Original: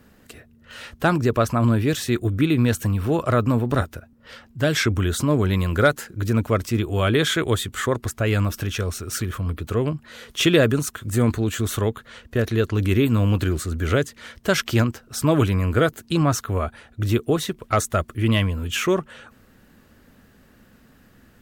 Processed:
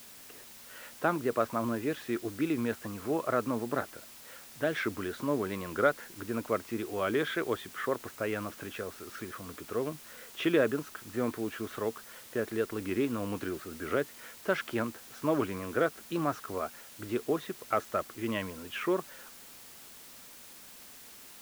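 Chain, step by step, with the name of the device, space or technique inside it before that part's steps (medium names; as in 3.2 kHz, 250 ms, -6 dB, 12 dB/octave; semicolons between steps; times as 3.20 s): wax cylinder (band-pass 280–2100 Hz; wow and flutter; white noise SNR 17 dB); trim -7.5 dB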